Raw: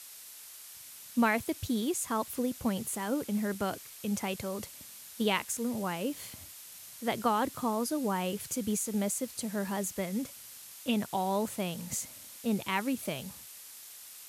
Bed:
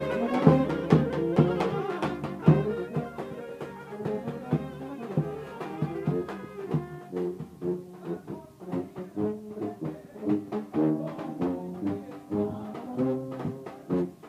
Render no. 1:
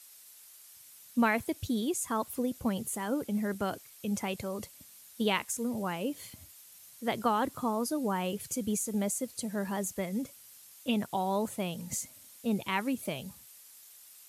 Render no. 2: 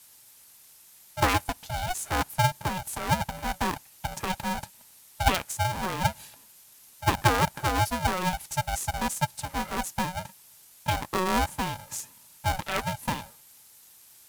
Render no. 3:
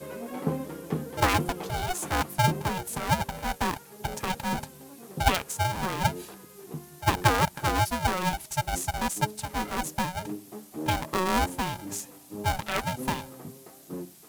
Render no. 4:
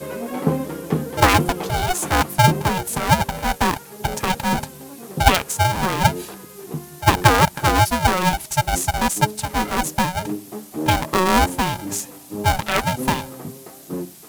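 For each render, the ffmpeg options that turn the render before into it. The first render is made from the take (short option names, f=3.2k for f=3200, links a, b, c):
-af "afftdn=nr=8:nf=-49"
-af "highpass=f=480:t=q:w=4.9,aeval=exprs='val(0)*sgn(sin(2*PI*370*n/s))':c=same"
-filter_complex "[1:a]volume=-10dB[a];[0:a][a]amix=inputs=2:normalize=0"
-af "volume=9dB,alimiter=limit=-2dB:level=0:latency=1"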